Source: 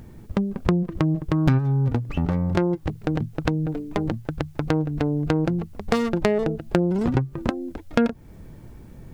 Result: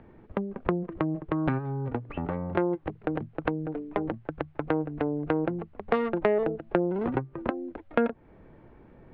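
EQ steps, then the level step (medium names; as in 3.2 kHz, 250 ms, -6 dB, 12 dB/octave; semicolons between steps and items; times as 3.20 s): distance through air 330 m; three-band isolator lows -13 dB, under 300 Hz, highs -19 dB, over 3.4 kHz; 0.0 dB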